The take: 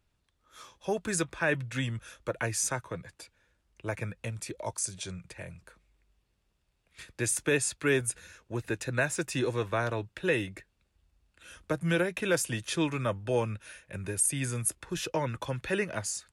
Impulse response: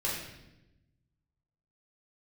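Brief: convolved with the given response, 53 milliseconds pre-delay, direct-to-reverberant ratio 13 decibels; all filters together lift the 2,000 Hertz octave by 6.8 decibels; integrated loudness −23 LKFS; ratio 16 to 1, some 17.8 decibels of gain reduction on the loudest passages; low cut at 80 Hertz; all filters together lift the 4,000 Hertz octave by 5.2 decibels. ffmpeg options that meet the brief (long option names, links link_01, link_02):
-filter_complex "[0:a]highpass=80,equalizer=frequency=2000:width_type=o:gain=8,equalizer=frequency=4000:width_type=o:gain=4,acompressor=threshold=-36dB:ratio=16,asplit=2[link_01][link_02];[1:a]atrim=start_sample=2205,adelay=53[link_03];[link_02][link_03]afir=irnorm=-1:irlink=0,volume=-19.5dB[link_04];[link_01][link_04]amix=inputs=2:normalize=0,volume=17.5dB"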